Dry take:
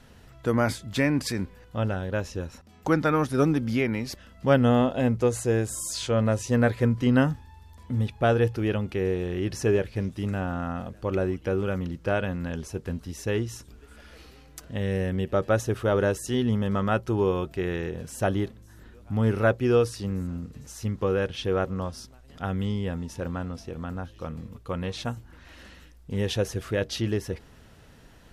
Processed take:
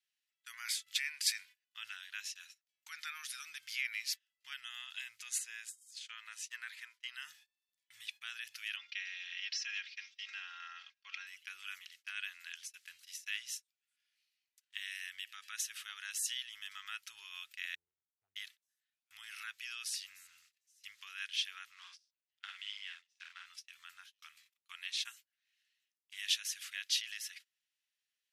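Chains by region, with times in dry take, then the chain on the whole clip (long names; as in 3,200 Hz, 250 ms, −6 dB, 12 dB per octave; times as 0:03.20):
0:05.38–0:07.15: linear-phase brick-wall high-pass 360 Hz + high-shelf EQ 2,400 Hz −8.5 dB
0:08.76–0:11.27: Chebyshev band-pass filter 160–5,600 Hz, order 4 + low-shelf EQ 260 Hz −7 dB + comb filter 3.7 ms, depth 97%
0:17.75–0:18.36: Gaussian smoothing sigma 17 samples + downward compressor 2 to 1, threshold −37 dBFS
0:21.72–0:23.46: mu-law and A-law mismatch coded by A + band-pass filter 300–5,300 Hz + double-tracking delay 49 ms −4 dB
whole clip: noise gate −37 dBFS, range −28 dB; brickwall limiter −18.5 dBFS; inverse Chebyshev high-pass filter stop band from 620 Hz, stop band 60 dB; level +1.5 dB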